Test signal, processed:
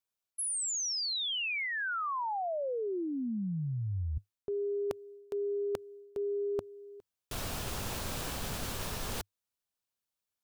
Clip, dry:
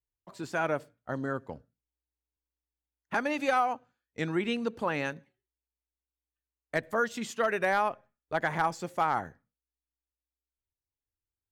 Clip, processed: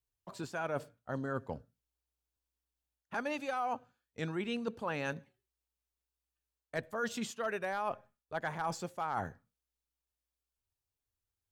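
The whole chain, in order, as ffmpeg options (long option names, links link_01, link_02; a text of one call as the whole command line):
ffmpeg -i in.wav -af "equalizer=frequency=100:width_type=o:width=0.33:gain=4,equalizer=frequency=315:width_type=o:width=0.33:gain=-4,equalizer=frequency=2000:width_type=o:width=0.33:gain=-5,areverse,acompressor=threshold=-35dB:ratio=6,areverse,volume=2dB" out.wav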